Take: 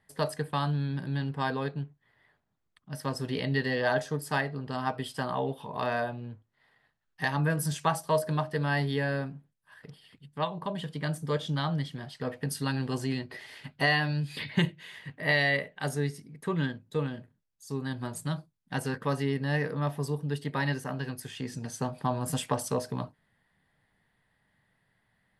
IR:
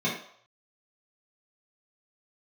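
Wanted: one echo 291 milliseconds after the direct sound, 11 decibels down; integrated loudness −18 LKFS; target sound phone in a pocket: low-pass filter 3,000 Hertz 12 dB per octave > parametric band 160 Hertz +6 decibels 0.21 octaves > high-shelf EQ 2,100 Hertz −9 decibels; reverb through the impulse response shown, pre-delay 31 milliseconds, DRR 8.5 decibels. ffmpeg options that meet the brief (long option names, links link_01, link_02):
-filter_complex "[0:a]aecho=1:1:291:0.282,asplit=2[link_01][link_02];[1:a]atrim=start_sample=2205,adelay=31[link_03];[link_02][link_03]afir=irnorm=-1:irlink=0,volume=-19.5dB[link_04];[link_01][link_04]amix=inputs=2:normalize=0,lowpass=3000,equalizer=frequency=160:width_type=o:width=0.21:gain=6,highshelf=frequency=2100:gain=-9,volume=11.5dB"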